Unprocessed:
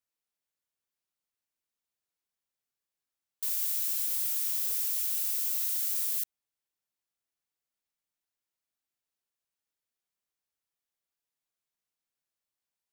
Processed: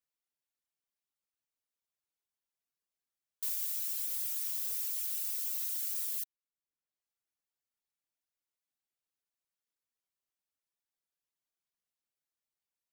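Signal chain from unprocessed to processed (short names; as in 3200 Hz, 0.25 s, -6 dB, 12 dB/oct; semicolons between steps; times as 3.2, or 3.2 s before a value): reverb removal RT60 0.76 s; gain -3 dB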